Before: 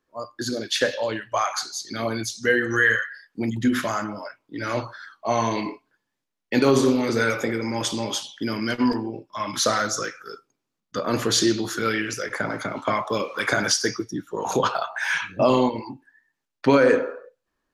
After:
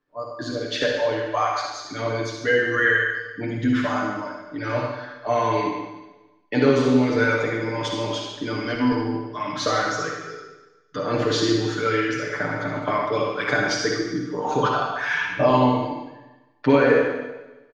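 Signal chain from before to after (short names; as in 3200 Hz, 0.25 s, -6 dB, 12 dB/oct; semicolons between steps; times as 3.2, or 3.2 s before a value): air absorption 160 m; comb 6.8 ms, depth 78%; reverb RT60 1.1 s, pre-delay 49 ms, DRR 0.5 dB; gain -2 dB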